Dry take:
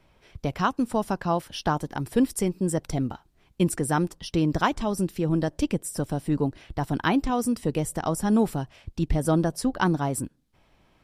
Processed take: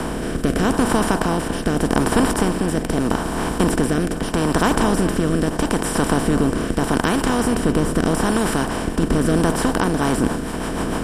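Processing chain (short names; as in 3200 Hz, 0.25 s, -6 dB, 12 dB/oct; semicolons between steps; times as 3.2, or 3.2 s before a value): per-bin compression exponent 0.2; rotary speaker horn 0.8 Hz, later 6.7 Hz, at 9.61; delay with a stepping band-pass 0.212 s, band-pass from 870 Hz, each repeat 1.4 oct, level -9 dB; gain -1 dB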